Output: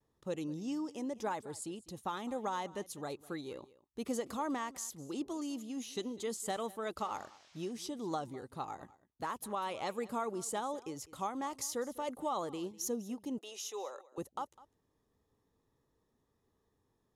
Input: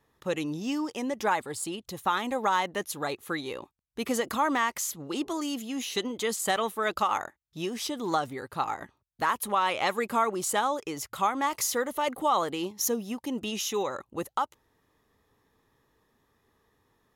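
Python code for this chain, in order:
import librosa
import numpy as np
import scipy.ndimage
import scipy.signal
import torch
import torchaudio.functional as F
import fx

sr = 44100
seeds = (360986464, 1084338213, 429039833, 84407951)

y = scipy.signal.sosfilt(scipy.signal.butter(2, 9500.0, 'lowpass', fs=sr, output='sos'), x)
y = fx.peak_eq(y, sr, hz=2000.0, db=-10.5, octaves=2.3)
y = y + 10.0 ** (-20.0 / 20.0) * np.pad(y, (int(201 * sr / 1000.0), 0))[:len(y)]
y = fx.vibrato(y, sr, rate_hz=0.33, depth_cents=20.0)
y = fx.dmg_noise_band(y, sr, seeds[0], low_hz=610.0, high_hz=6200.0, level_db=-59.0, at=(6.96, 7.71), fade=0.02)
y = fx.highpass(y, sr, hz=460.0, slope=24, at=(13.38, 14.18))
y = y * librosa.db_to_amplitude(-6.0)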